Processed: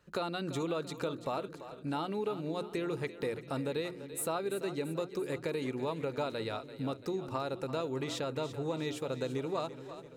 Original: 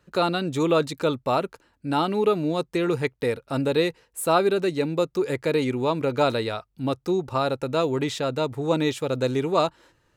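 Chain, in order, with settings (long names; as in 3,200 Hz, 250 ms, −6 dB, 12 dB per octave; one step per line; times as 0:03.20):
mains-hum notches 60/120/180/240/300/360 Hz
downward compressor 4 to 1, threshold −30 dBFS, peak gain reduction 13 dB
echo with a time of its own for lows and highs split 390 Hz, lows 454 ms, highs 339 ms, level −12.5 dB
level −3.5 dB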